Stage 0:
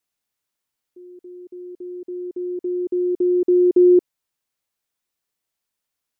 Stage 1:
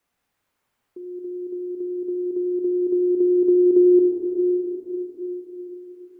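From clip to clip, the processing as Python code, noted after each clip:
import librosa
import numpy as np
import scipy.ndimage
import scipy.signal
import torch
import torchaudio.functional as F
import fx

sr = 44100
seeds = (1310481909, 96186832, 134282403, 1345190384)

y = fx.rev_plate(x, sr, seeds[0], rt60_s=3.1, hf_ratio=0.9, predelay_ms=0, drr_db=-1.0)
y = fx.band_squash(y, sr, depth_pct=40)
y = y * librosa.db_to_amplitude(-2.0)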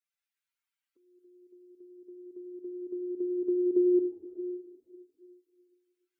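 y = fx.bin_expand(x, sr, power=2.0)
y = y * librosa.db_to_amplitude(-8.5)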